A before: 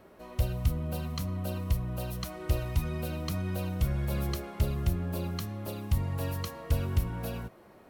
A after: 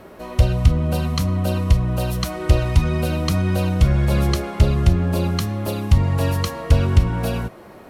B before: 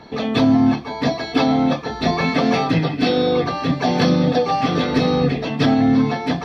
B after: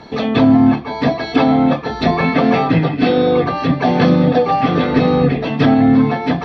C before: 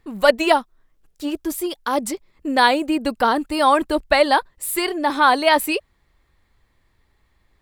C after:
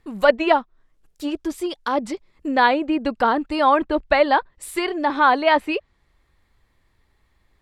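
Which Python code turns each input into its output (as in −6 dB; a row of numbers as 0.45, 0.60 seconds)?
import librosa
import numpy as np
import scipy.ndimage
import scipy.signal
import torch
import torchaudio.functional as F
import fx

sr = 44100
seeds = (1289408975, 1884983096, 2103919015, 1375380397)

y = fx.env_lowpass_down(x, sr, base_hz=2800.0, full_db=-17.0)
y = librosa.util.normalize(y) * 10.0 ** (-2 / 20.0)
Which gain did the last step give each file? +13.0, +4.0, −0.5 decibels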